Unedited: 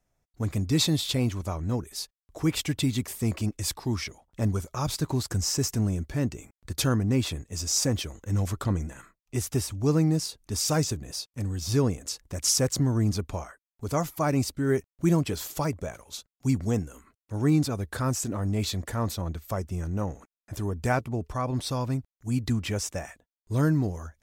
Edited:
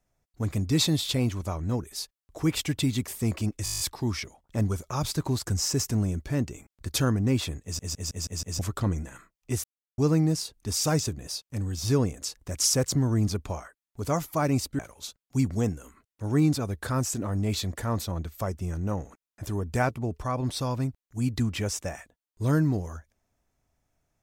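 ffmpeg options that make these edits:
ffmpeg -i in.wav -filter_complex "[0:a]asplit=18[link_01][link_02][link_03][link_04][link_05][link_06][link_07][link_08][link_09][link_10][link_11][link_12][link_13][link_14][link_15][link_16][link_17][link_18];[link_01]atrim=end=3.662[link_19];[link_02]atrim=start=3.638:end=3.662[link_20];[link_03]atrim=start=3.638:end=3.662[link_21];[link_04]atrim=start=3.638:end=3.662[link_22];[link_05]atrim=start=3.638:end=3.662[link_23];[link_06]atrim=start=3.638:end=3.662[link_24];[link_07]atrim=start=3.638:end=3.662[link_25];[link_08]atrim=start=3.638:end=3.662[link_26];[link_09]atrim=start=3.638:end=7.632[link_27];[link_10]atrim=start=7.468:end=7.632[link_28];[link_11]atrim=start=7.468:end=7.632[link_29];[link_12]atrim=start=7.468:end=7.632[link_30];[link_13]atrim=start=7.468:end=7.632[link_31];[link_14]atrim=start=7.468:end=7.632[link_32];[link_15]atrim=start=8.428:end=9.48,asetpts=PTS-STARTPTS,afade=type=out:start_time=1.048:duration=0.004:curve=hsin[link_33];[link_16]atrim=start=9.48:end=9.82,asetpts=PTS-STARTPTS,volume=0[link_34];[link_17]atrim=start=9.82:end=14.632,asetpts=PTS-STARTPTS,afade=type=in:duration=0.004:curve=hsin[link_35];[link_18]atrim=start=15.888[link_36];[link_19][link_20]acrossfade=duration=0.004:curve1=hsin:curve2=hsin[link_37];[link_37][link_21]acrossfade=duration=0.004:curve1=hsin:curve2=hsin[link_38];[link_38][link_22]acrossfade=duration=0.004:curve1=hsin:curve2=hsin[link_39];[link_39][link_23]acrossfade=duration=0.004:curve1=hsin:curve2=hsin[link_40];[link_40][link_24]acrossfade=duration=0.004:curve1=hsin:curve2=hsin[link_41];[link_41][link_25]acrossfade=duration=0.004:curve1=hsin:curve2=hsin[link_42];[link_42][link_26]acrossfade=duration=0.004:curve1=hsin:curve2=hsin[link_43];[link_43][link_27]acrossfade=duration=0.004:curve1=hsin:curve2=hsin[link_44];[link_44][link_28]acrossfade=duration=0.004:curve1=hsin:curve2=hsin[link_45];[link_45][link_29]acrossfade=duration=0.004:curve1=hsin:curve2=hsin[link_46];[link_46][link_30]acrossfade=duration=0.004:curve1=hsin:curve2=hsin[link_47];[link_47][link_31]acrossfade=duration=0.004:curve1=hsin:curve2=hsin[link_48];[link_48][link_32]acrossfade=duration=0.004:curve1=hsin:curve2=hsin[link_49];[link_33][link_34][link_35]concat=n=3:v=0:a=1[link_50];[link_49][link_50]acrossfade=duration=0.004:curve1=hsin:curve2=hsin[link_51];[link_51][link_36]acrossfade=duration=0.004:curve1=hsin:curve2=hsin" out.wav

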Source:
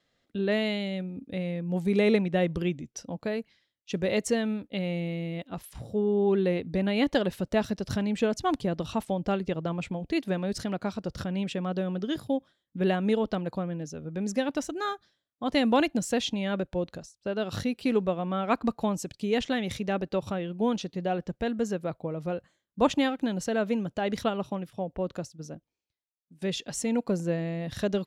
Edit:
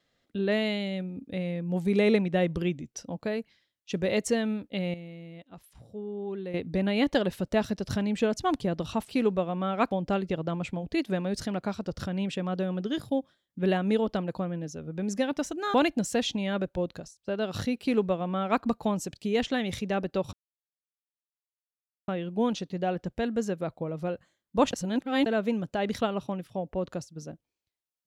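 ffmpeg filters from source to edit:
ffmpeg -i in.wav -filter_complex "[0:a]asplit=9[link_01][link_02][link_03][link_04][link_05][link_06][link_07][link_08][link_09];[link_01]atrim=end=4.942[link_10];[link_02]atrim=start=4.938:end=6.542,asetpts=PTS-STARTPTS,volume=-11dB[link_11];[link_03]atrim=start=6.538:end=9.092[link_12];[link_04]atrim=start=17.788:end=18.612[link_13];[link_05]atrim=start=9.088:end=14.922[link_14];[link_06]atrim=start=15.718:end=20.31,asetpts=PTS-STARTPTS,afade=type=out:start_time=4.588:duration=0.004:curve=hsin,apad=pad_dur=1.75[link_15];[link_07]atrim=start=20.31:end=22.962,asetpts=PTS-STARTPTS,afade=type=in:duration=0.004:curve=hsin[link_16];[link_08]atrim=start=22.958:end=23.492,asetpts=PTS-STARTPTS,areverse[link_17];[link_09]atrim=start=23.488[link_18];[link_10][link_11]acrossfade=duration=0.004:curve1=hsin:curve2=hsin[link_19];[link_19][link_12]acrossfade=duration=0.004:curve1=hsin:curve2=hsin[link_20];[link_20][link_13]acrossfade=duration=0.004:curve1=hsin:curve2=hsin[link_21];[link_21][link_14]acrossfade=duration=0.004:curve1=hsin:curve2=hsin[link_22];[link_15][link_16]concat=n=2:v=0:a=1[link_23];[link_22][link_23]acrossfade=duration=0.004:curve1=hsin:curve2=hsin[link_24];[link_24][link_17]acrossfade=duration=0.004:curve1=hsin:curve2=hsin[link_25];[link_25][link_18]acrossfade=duration=0.004:curve1=hsin:curve2=hsin" out.wav

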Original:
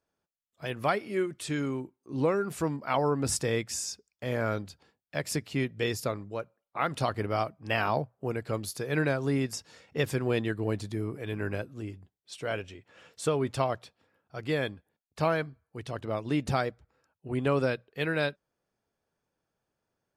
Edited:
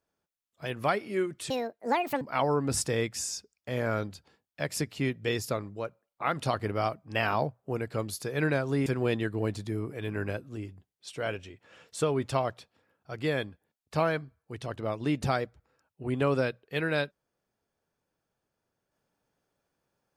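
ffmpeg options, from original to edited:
ffmpeg -i in.wav -filter_complex "[0:a]asplit=4[link_01][link_02][link_03][link_04];[link_01]atrim=end=1.504[link_05];[link_02]atrim=start=1.5:end=2.76,asetpts=PTS-STARTPTS,asetrate=78057,aresample=44100,atrim=end_sample=31393,asetpts=PTS-STARTPTS[link_06];[link_03]atrim=start=2.756:end=9.412[link_07];[link_04]atrim=start=10.108[link_08];[link_05][link_06]acrossfade=duration=0.004:curve1=hsin:curve2=hsin[link_09];[link_09][link_07]acrossfade=duration=0.004:curve1=hsin:curve2=hsin[link_10];[link_10][link_08]acrossfade=duration=0.004:curve1=hsin:curve2=hsin" out.wav

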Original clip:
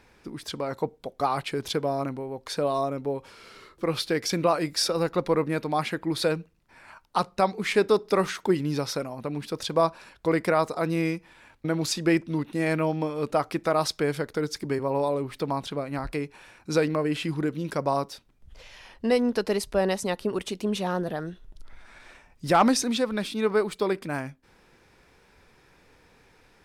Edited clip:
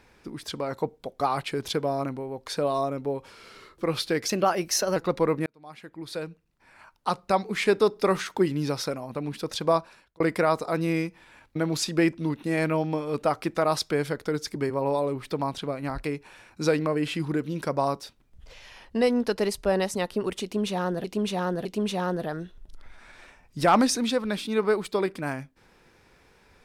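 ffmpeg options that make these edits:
ffmpeg -i in.wav -filter_complex "[0:a]asplit=7[link_01][link_02][link_03][link_04][link_05][link_06][link_07];[link_01]atrim=end=4.284[link_08];[link_02]atrim=start=4.28:end=5.05,asetpts=PTS-STARTPTS,asetrate=49833,aresample=44100,atrim=end_sample=30050,asetpts=PTS-STARTPTS[link_09];[link_03]atrim=start=5.046:end=5.55,asetpts=PTS-STARTPTS,afade=type=out:start_time=0.5:duration=0.004:curve=hsin[link_10];[link_04]atrim=start=5.55:end=10.29,asetpts=PTS-STARTPTS,afade=type=in:duration=1.98,afade=type=out:start_time=4.25:duration=0.49[link_11];[link_05]atrim=start=10.29:end=21.132,asetpts=PTS-STARTPTS,afade=type=in:duration=0.004:curve=hsin[link_12];[link_06]atrim=start=20.518:end=21.132[link_13];[link_07]atrim=start=20.518[link_14];[link_08][link_09]acrossfade=duration=0.004:curve1=hsin:curve2=hsin[link_15];[link_10][link_11][link_12]concat=n=3:v=0:a=1[link_16];[link_15][link_16]acrossfade=duration=0.004:curve1=hsin:curve2=hsin[link_17];[link_17][link_13]acrossfade=duration=0.004:curve1=hsin:curve2=hsin[link_18];[link_18][link_14]acrossfade=duration=0.004:curve1=hsin:curve2=hsin" out.wav

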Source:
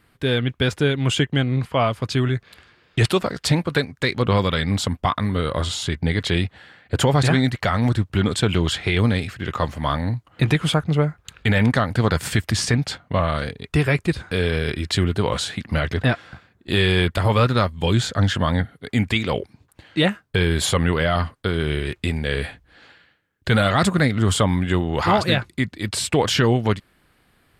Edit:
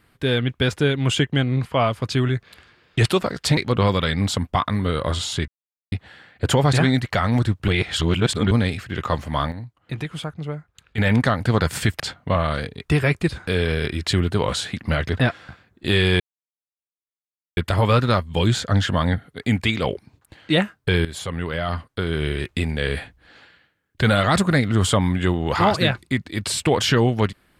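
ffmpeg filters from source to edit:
ffmpeg -i in.wav -filter_complex "[0:a]asplit=11[link_01][link_02][link_03][link_04][link_05][link_06][link_07][link_08][link_09][link_10][link_11];[link_01]atrim=end=3.572[link_12];[link_02]atrim=start=4.068:end=5.98,asetpts=PTS-STARTPTS,afade=type=out:start_time=1.908:duration=0.004:curve=hsin[link_13];[link_03]atrim=start=5.98:end=6.42,asetpts=PTS-STARTPTS,volume=0[link_14];[link_04]atrim=start=6.42:end=8.182,asetpts=PTS-STARTPTS,afade=type=in:duration=0.004:curve=hsin[link_15];[link_05]atrim=start=8.178:end=9.012,asetpts=PTS-STARTPTS,areverse[link_16];[link_06]atrim=start=9.008:end=10.02,asetpts=PTS-STARTPTS,afade=type=out:start_time=0.732:duration=0.28:curve=log:silence=0.298538[link_17];[link_07]atrim=start=10.02:end=11.48,asetpts=PTS-STARTPTS,volume=-10.5dB[link_18];[link_08]atrim=start=11.48:end=12.502,asetpts=PTS-STARTPTS,afade=type=in:duration=0.28:curve=log:silence=0.298538[link_19];[link_09]atrim=start=12.838:end=17.04,asetpts=PTS-STARTPTS,afade=type=out:start_time=4.198:duration=0.004:curve=hsin,apad=pad_dur=1.37[link_20];[link_10]atrim=start=17.04:end=20.52,asetpts=PTS-STARTPTS,afade=type=in:duration=0.004:curve=hsin,afade=type=out:start_time=3.476:duration=0.004:curve=hsin:silence=0.199526[link_21];[link_11]atrim=start=20.52,asetpts=PTS-STARTPTS,afade=type=in:duration=1.3:silence=0.199526[link_22];[link_13][link_14][link_15]concat=n=3:v=0:a=1[link_23];[link_12][link_23]acrossfade=duration=0.004:curve1=hsin:curve2=hsin[link_24];[link_24][link_16]acrossfade=duration=0.004:curve1=hsin:curve2=hsin[link_25];[link_17][link_18][link_19]concat=n=3:v=0:a=1[link_26];[link_25][link_26]acrossfade=duration=0.004:curve1=hsin:curve2=hsin[link_27];[link_20][link_21][link_22]concat=n=3:v=0:a=1[link_28];[link_27][link_28]acrossfade=duration=0.004:curve1=hsin:curve2=hsin" out.wav

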